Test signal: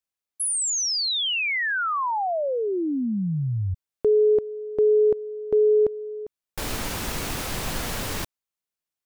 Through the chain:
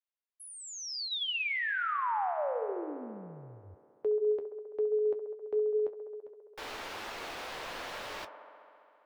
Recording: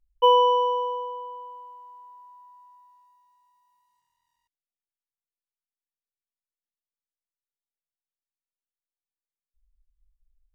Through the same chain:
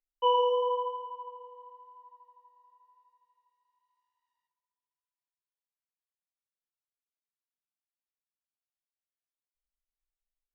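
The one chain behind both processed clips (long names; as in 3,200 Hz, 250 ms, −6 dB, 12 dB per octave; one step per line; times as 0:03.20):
three-way crossover with the lows and the highs turned down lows −19 dB, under 380 Hz, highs −16 dB, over 4,700 Hz
flanger 0.99 Hz, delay 8.7 ms, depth 6.2 ms, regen −51%
on a send: delay with a band-pass on its return 67 ms, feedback 84%, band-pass 740 Hz, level −9.5 dB
on the sum: level −3.5 dB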